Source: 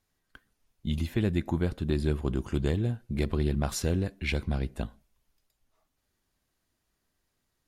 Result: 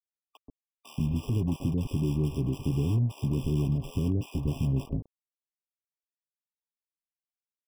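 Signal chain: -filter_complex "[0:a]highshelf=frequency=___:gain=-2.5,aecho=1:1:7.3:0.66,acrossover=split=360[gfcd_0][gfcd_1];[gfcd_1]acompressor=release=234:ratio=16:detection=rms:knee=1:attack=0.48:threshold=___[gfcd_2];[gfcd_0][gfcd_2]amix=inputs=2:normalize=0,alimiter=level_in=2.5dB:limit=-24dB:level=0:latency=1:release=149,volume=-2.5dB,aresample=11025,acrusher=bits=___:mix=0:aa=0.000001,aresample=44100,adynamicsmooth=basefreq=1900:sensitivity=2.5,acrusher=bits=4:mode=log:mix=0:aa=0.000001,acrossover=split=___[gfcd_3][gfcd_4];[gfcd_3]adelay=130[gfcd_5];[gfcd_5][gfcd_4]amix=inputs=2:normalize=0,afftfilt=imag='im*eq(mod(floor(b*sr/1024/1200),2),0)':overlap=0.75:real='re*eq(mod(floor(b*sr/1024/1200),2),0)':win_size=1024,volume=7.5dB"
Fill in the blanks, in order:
3100, -41dB, 7, 630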